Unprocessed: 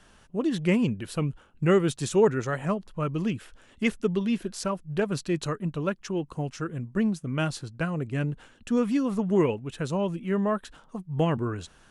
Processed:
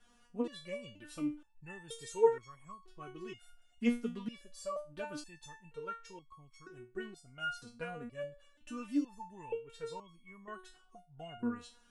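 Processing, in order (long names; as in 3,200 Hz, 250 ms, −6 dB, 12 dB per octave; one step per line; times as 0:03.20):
step-sequenced resonator 2.1 Hz 240–1,100 Hz
level +4 dB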